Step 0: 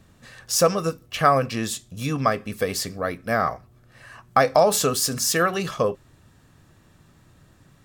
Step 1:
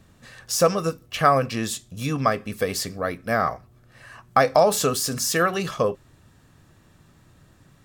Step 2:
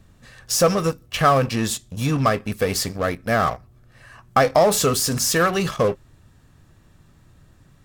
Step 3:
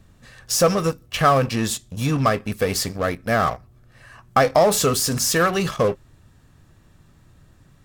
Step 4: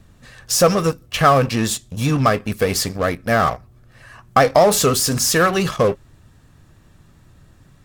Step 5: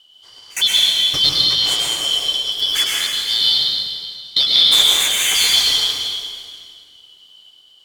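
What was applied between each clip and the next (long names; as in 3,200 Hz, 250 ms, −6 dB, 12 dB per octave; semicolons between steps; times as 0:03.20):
de-essing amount 35%
low-shelf EQ 78 Hz +10.5 dB; in parallel at −9 dB: fuzz pedal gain 25 dB, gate −34 dBFS; on the sum: level −1.5 dB
no processing that can be heard
pitch vibrato 9.8 Hz 39 cents; level +3 dB
band-splitting scrambler in four parts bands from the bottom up 3412; gate pattern "xxxxx..xxxx" 186 BPM −24 dB; convolution reverb RT60 2.1 s, pre-delay 98 ms, DRR −4 dB; level −3.5 dB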